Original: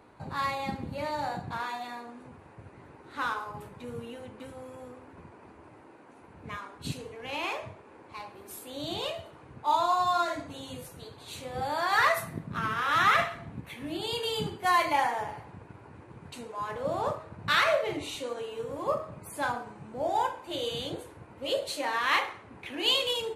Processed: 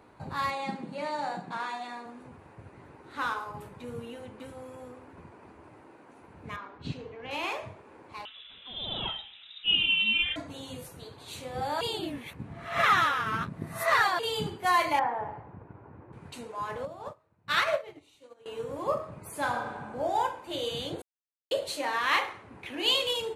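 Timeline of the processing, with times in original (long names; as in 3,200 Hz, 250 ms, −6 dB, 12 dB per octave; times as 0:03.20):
0:00.50–0:02.06: elliptic band-pass filter 180–9,300 Hz
0:06.56–0:07.31: high-frequency loss of the air 180 metres
0:08.25–0:10.36: voice inversion scrambler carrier 3,800 Hz
0:11.81–0:14.19: reverse
0:14.99–0:16.13: low-pass filter 1,400 Hz
0:16.85–0:18.46: expander for the loud parts 2.5 to 1, over −38 dBFS
0:19.19–0:19.75: thrown reverb, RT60 1.7 s, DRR 3.5 dB
0:21.02–0:21.51: silence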